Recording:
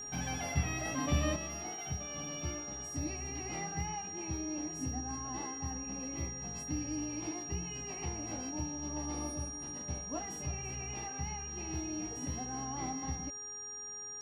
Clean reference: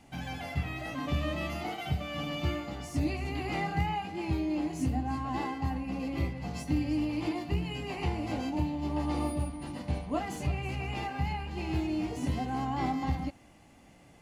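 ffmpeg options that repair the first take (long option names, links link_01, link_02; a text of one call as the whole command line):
ffmpeg -i in.wav -af "bandreject=frequency=416:width_type=h:width=4,bandreject=frequency=832:width_type=h:width=4,bandreject=frequency=1248:width_type=h:width=4,bandreject=frequency=1664:width_type=h:width=4,bandreject=frequency=5700:width=30,asetnsamples=nb_out_samples=441:pad=0,asendcmd='1.36 volume volume 8.5dB',volume=0dB" out.wav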